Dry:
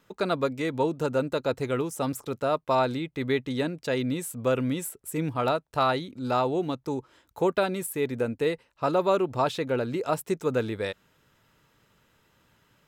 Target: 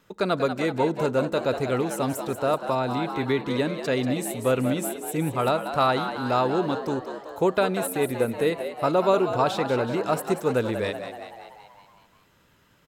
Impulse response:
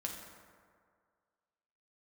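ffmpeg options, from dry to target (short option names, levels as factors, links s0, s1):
-filter_complex "[0:a]asplit=8[s0][s1][s2][s3][s4][s5][s6][s7];[s1]adelay=189,afreqshift=81,volume=0.335[s8];[s2]adelay=378,afreqshift=162,volume=0.202[s9];[s3]adelay=567,afreqshift=243,volume=0.12[s10];[s4]adelay=756,afreqshift=324,volume=0.0724[s11];[s5]adelay=945,afreqshift=405,volume=0.0437[s12];[s6]adelay=1134,afreqshift=486,volume=0.026[s13];[s7]adelay=1323,afreqshift=567,volume=0.0157[s14];[s0][s8][s9][s10][s11][s12][s13][s14]amix=inputs=8:normalize=0,asettb=1/sr,asplit=3[s15][s16][s17];[s15]atrim=end=2.544[s18];[s16]atrim=start=2.54:end=3.44,asetpts=PTS-STARTPTS,afade=t=in:d=0.004:c=qsin,afade=t=out:st=0.896:d=0.004:c=qsin,acrossover=split=330[s19][s20];[s20]acompressor=threshold=0.0501:ratio=3[s21];[s19][s21]amix=inputs=2:normalize=0[s22];[s17]atrim=start=3.436[s23];[s18][s22]acrossfade=d=0.004:c1=hsin:c2=qsin[s24];[s24][s23]acrossfade=d=0.004:c1=qsin:c2=hsin,asplit=2[s25][s26];[1:a]atrim=start_sample=2205,lowshelf=f=130:g=12[s27];[s26][s27]afir=irnorm=-1:irlink=0,volume=0.119[s28];[s25][s28]amix=inputs=2:normalize=0,volume=1.19"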